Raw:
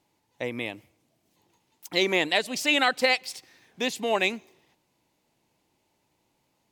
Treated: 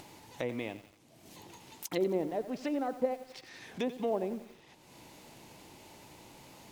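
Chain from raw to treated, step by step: treble ducked by the level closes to 590 Hz, closed at -22 dBFS; in parallel at -7.5 dB: sample gate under -40.5 dBFS; on the sum: dynamic EQ 2200 Hz, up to -6 dB, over -46 dBFS, Q 0.76; upward compressor, threshold -27 dBFS; lo-fi delay 89 ms, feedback 55%, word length 7-bit, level -13 dB; gain -6 dB

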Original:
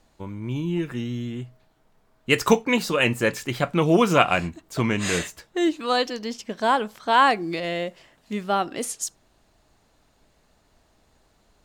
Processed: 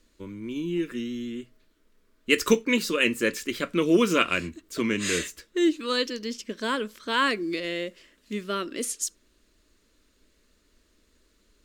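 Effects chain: fixed phaser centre 320 Hz, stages 4

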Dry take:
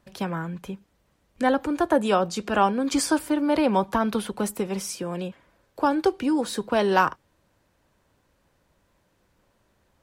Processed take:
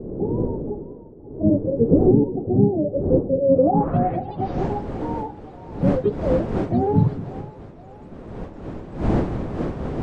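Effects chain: spectrum mirrored in octaves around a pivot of 400 Hz; wind noise 350 Hz -31 dBFS; bell 13000 Hz -12.5 dB 0.74 oct; in parallel at -7.5 dB: soft clip -18.5 dBFS, distortion -12 dB; on the sum: low-pass sweep 420 Hz -> 8900 Hz, 3.42–4.74; on a send: split-band echo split 510 Hz, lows 0.209 s, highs 0.524 s, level -15 dB

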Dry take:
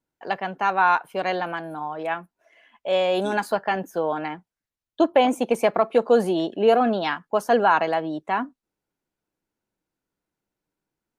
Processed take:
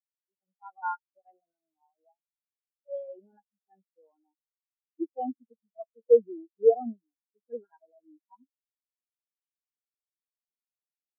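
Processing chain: median-filter separation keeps harmonic; dynamic EQ 540 Hz, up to -4 dB, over -29 dBFS, Q 0.94; spectral expander 4:1; gain +1 dB

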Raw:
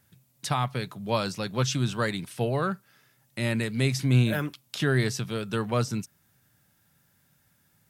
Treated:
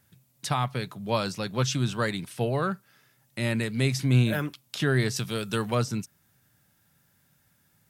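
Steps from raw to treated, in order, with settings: 5.16–5.75 high shelf 3600 Hz +9 dB

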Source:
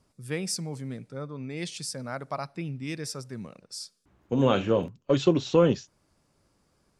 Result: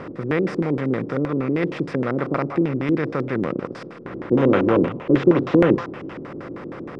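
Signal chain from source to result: per-bin compression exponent 0.4; delay with a stepping band-pass 0.199 s, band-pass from 1000 Hz, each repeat 1.4 oct, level -7 dB; LFO low-pass square 6.4 Hz 330–1900 Hz

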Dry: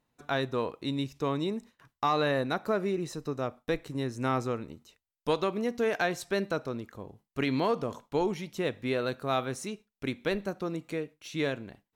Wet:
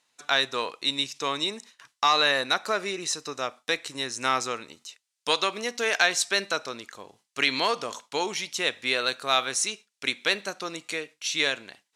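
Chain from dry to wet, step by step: weighting filter ITU-R 468; gain +5 dB

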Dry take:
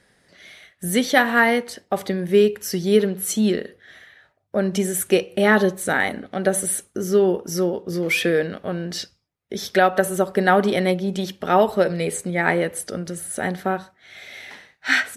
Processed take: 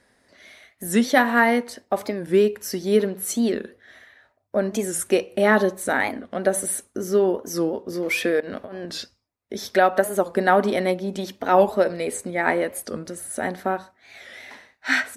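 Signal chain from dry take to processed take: thirty-one-band EQ 160 Hz -12 dB, 250 Hz +6 dB, 630 Hz +4 dB, 1000 Hz +5 dB, 3150 Hz -4 dB; 8.4–8.87 negative-ratio compressor -32 dBFS, ratio -1; record warp 45 rpm, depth 160 cents; gain -2.5 dB

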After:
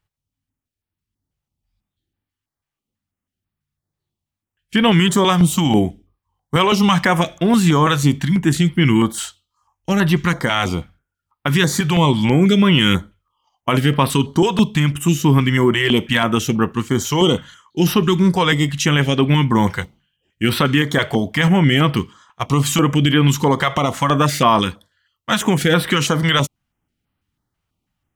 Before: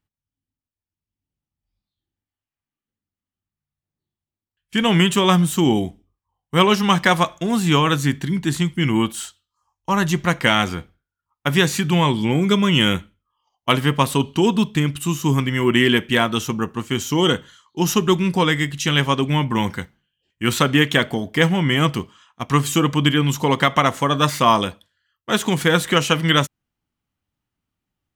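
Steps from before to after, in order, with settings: high shelf 6200 Hz -4 dB; maximiser +9.5 dB; stepped notch 6.1 Hz 250–6800 Hz; gain -3 dB

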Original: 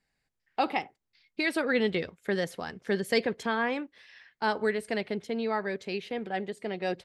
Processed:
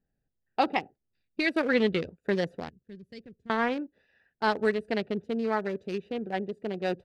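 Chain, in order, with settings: Wiener smoothing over 41 samples; 2.69–3.5 passive tone stack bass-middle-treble 10-0-1; gain +3 dB

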